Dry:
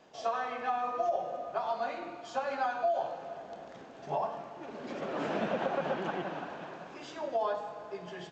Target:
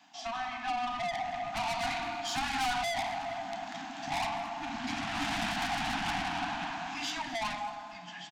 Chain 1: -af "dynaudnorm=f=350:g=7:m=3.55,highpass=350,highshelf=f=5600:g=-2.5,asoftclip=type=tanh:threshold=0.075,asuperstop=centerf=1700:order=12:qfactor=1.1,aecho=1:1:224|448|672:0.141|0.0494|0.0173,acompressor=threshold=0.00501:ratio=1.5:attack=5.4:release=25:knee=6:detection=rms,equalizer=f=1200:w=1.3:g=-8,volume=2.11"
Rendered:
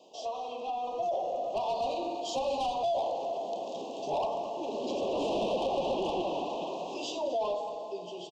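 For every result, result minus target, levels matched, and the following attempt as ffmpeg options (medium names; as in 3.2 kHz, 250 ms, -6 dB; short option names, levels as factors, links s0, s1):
2 kHz band -16.0 dB; compression: peak gain reduction +8 dB; saturation: distortion -5 dB
-af "dynaudnorm=f=350:g=7:m=3.55,highpass=350,highshelf=f=5600:g=-2.5,asoftclip=type=tanh:threshold=0.075,asuperstop=centerf=460:order=12:qfactor=1.1,aecho=1:1:224|448|672:0.141|0.0494|0.0173,acompressor=threshold=0.00501:ratio=1.5:attack=5.4:release=25:knee=6:detection=rms,equalizer=f=1200:w=1.3:g=-8,volume=2.11"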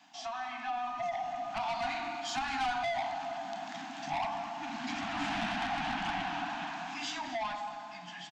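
compression: peak gain reduction +8 dB; saturation: distortion -5 dB
-af "dynaudnorm=f=350:g=7:m=3.55,highpass=350,highshelf=f=5600:g=-2.5,asoftclip=type=tanh:threshold=0.075,asuperstop=centerf=460:order=12:qfactor=1.1,equalizer=f=1200:w=1.3:g=-8,aecho=1:1:224|448|672:0.141|0.0494|0.0173,volume=2.11"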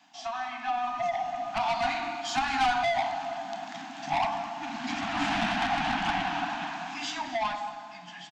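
saturation: distortion -5 dB
-af "dynaudnorm=f=350:g=7:m=3.55,highpass=350,highshelf=f=5600:g=-2.5,asoftclip=type=tanh:threshold=0.0282,asuperstop=centerf=460:order=12:qfactor=1.1,equalizer=f=1200:w=1.3:g=-8,aecho=1:1:224|448|672:0.141|0.0494|0.0173,volume=2.11"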